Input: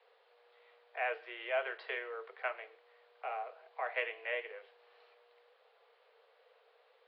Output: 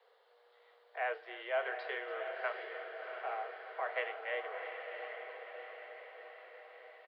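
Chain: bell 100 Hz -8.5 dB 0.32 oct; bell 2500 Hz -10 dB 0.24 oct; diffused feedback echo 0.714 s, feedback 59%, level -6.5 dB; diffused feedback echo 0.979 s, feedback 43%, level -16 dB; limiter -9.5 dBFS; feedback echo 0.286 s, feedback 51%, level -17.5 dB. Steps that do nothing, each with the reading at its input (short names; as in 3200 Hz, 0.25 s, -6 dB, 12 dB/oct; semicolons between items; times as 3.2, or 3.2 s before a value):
bell 100 Hz: input band starts at 340 Hz; limiter -9.5 dBFS: input peak -22.0 dBFS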